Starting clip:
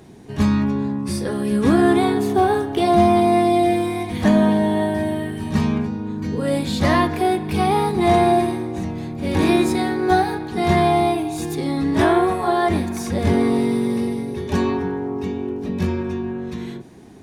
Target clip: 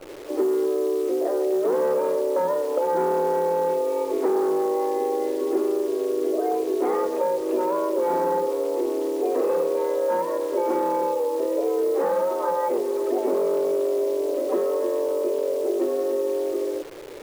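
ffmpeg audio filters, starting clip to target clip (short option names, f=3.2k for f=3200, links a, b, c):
-af "highpass=f=110:w=0.5412,highpass=f=110:w=1.3066,equalizer=f=260:t=o:w=2.9:g=9.5,aresample=11025,asoftclip=type=hard:threshold=-5.5dB,aresample=44100,acompressor=threshold=-16dB:ratio=8,afreqshift=170,lowpass=1.3k,acrusher=bits=7:dc=4:mix=0:aa=0.000001,volume=-4dB"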